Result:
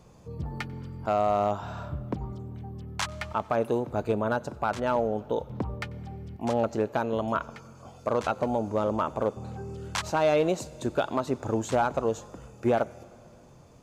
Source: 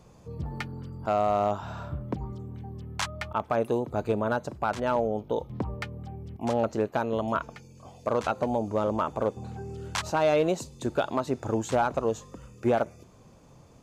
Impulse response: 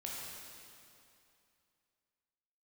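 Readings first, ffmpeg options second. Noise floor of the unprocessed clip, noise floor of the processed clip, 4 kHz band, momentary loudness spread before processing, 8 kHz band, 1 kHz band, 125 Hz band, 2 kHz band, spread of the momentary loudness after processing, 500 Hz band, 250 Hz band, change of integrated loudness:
−54 dBFS, −52 dBFS, 0.0 dB, 13 LU, 0.0 dB, 0.0 dB, 0.0 dB, 0.0 dB, 13 LU, 0.0 dB, 0.0 dB, 0.0 dB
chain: -filter_complex "[0:a]asplit=2[link_01][link_02];[1:a]atrim=start_sample=2205,adelay=93[link_03];[link_02][link_03]afir=irnorm=-1:irlink=0,volume=-21dB[link_04];[link_01][link_04]amix=inputs=2:normalize=0"

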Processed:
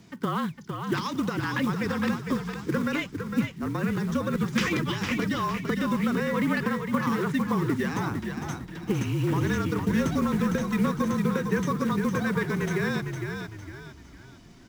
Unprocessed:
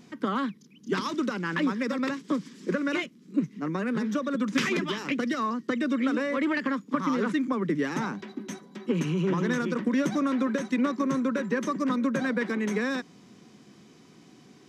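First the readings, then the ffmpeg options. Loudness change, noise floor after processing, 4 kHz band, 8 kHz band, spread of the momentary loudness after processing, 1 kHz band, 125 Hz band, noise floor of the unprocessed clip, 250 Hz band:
+1.0 dB, −49 dBFS, +1.0 dB, +2.5 dB, 7 LU, +1.5 dB, +7.5 dB, −55 dBFS, +0.5 dB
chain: -filter_complex "[0:a]acrusher=bits=6:mode=log:mix=0:aa=0.000001,afreqshift=-40,asplit=6[link_01][link_02][link_03][link_04][link_05][link_06];[link_02]adelay=456,afreqshift=-35,volume=-6dB[link_07];[link_03]adelay=912,afreqshift=-70,volume=-14.4dB[link_08];[link_04]adelay=1368,afreqshift=-105,volume=-22.8dB[link_09];[link_05]adelay=1824,afreqshift=-140,volume=-31.2dB[link_10];[link_06]adelay=2280,afreqshift=-175,volume=-39.6dB[link_11];[link_01][link_07][link_08][link_09][link_10][link_11]amix=inputs=6:normalize=0"

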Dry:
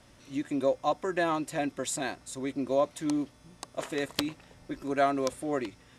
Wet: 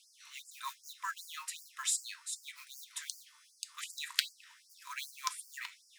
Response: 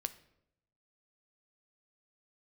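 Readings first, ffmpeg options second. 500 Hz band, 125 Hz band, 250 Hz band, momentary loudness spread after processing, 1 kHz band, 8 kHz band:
below −40 dB, below −40 dB, below −40 dB, 16 LU, −12.0 dB, +2.0 dB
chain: -filter_complex "[0:a]acrusher=bits=7:mode=log:mix=0:aa=0.000001[link_01];[1:a]atrim=start_sample=2205,afade=type=out:start_time=0.2:duration=0.01,atrim=end_sample=9261,asetrate=70560,aresample=44100[link_02];[link_01][link_02]afir=irnorm=-1:irlink=0,afftfilt=real='re*gte(b*sr/1024,870*pow(4600/870,0.5+0.5*sin(2*PI*2.6*pts/sr)))':imag='im*gte(b*sr/1024,870*pow(4600/870,0.5+0.5*sin(2*PI*2.6*pts/sr)))':win_size=1024:overlap=0.75,volume=7dB"

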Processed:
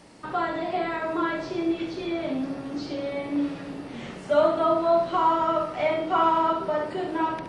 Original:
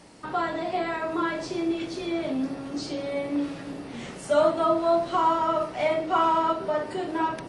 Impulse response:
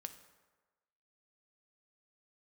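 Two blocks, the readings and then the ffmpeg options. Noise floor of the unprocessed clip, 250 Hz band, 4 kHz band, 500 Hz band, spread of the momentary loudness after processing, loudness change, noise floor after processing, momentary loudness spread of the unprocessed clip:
−40 dBFS, +0.5 dB, −1.0 dB, +0.5 dB, 11 LU, +0.5 dB, −40 dBFS, 10 LU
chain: -filter_complex "[0:a]asplit=2[link_01][link_02];[1:a]atrim=start_sample=2205,adelay=70[link_03];[link_02][link_03]afir=irnorm=-1:irlink=0,volume=-4.5dB[link_04];[link_01][link_04]amix=inputs=2:normalize=0,acrossover=split=4600[link_05][link_06];[link_06]acompressor=threshold=-60dB:ratio=4:attack=1:release=60[link_07];[link_05][link_07]amix=inputs=2:normalize=0"

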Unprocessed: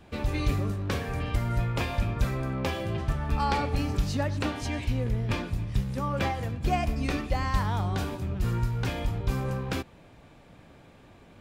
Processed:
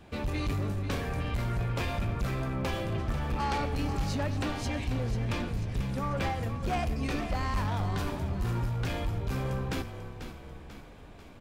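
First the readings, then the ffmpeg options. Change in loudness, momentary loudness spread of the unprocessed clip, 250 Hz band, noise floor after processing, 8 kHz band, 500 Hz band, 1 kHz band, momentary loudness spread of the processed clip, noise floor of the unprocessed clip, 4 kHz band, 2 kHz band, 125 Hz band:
−2.5 dB, 3 LU, −2.0 dB, −49 dBFS, −2.0 dB, −2.0 dB, −2.5 dB, 11 LU, −54 dBFS, −2.0 dB, −2.0 dB, −2.5 dB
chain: -filter_complex "[0:a]asoftclip=type=tanh:threshold=-25.5dB,asplit=7[link_01][link_02][link_03][link_04][link_05][link_06][link_07];[link_02]adelay=491,afreqshift=-30,volume=-10dB[link_08];[link_03]adelay=982,afreqshift=-60,volume=-15.4dB[link_09];[link_04]adelay=1473,afreqshift=-90,volume=-20.7dB[link_10];[link_05]adelay=1964,afreqshift=-120,volume=-26.1dB[link_11];[link_06]adelay=2455,afreqshift=-150,volume=-31.4dB[link_12];[link_07]adelay=2946,afreqshift=-180,volume=-36.8dB[link_13];[link_01][link_08][link_09][link_10][link_11][link_12][link_13]amix=inputs=7:normalize=0"

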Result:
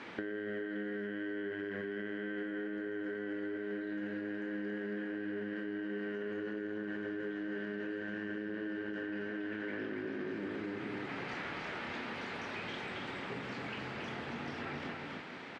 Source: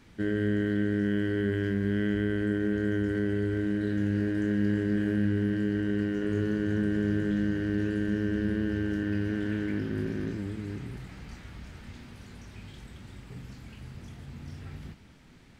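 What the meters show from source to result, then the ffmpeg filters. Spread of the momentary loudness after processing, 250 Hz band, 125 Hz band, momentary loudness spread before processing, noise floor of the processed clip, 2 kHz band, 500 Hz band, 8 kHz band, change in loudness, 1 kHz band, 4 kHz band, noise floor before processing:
2 LU, −11.5 dB, −19.0 dB, 18 LU, −44 dBFS, −2.5 dB, −6.5 dB, can't be measured, −11.0 dB, +4.5 dB, −1.5 dB, −52 dBFS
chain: -filter_complex "[0:a]highpass=410,lowpass=2700,asplit=2[link_01][link_02];[link_02]aecho=0:1:277:0.531[link_03];[link_01][link_03]amix=inputs=2:normalize=0,alimiter=level_in=10.5dB:limit=-24dB:level=0:latency=1,volume=-10.5dB,acompressor=threshold=-52dB:ratio=6,volume=15dB"

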